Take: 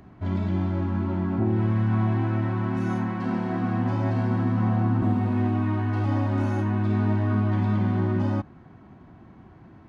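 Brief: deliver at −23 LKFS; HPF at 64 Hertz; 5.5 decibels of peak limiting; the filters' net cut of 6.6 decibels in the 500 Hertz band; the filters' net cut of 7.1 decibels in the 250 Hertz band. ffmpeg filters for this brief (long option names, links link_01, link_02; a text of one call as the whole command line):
ffmpeg -i in.wav -af "highpass=64,equalizer=frequency=250:width_type=o:gain=-7.5,equalizer=frequency=500:width_type=o:gain=-6.5,volume=7.5dB,alimiter=limit=-14.5dB:level=0:latency=1" out.wav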